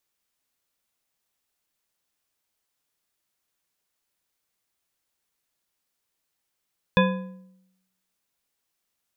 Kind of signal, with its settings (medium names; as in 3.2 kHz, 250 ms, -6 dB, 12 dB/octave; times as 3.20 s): metal hit bar, lowest mode 187 Hz, modes 6, decay 0.88 s, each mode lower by 2 dB, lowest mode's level -16 dB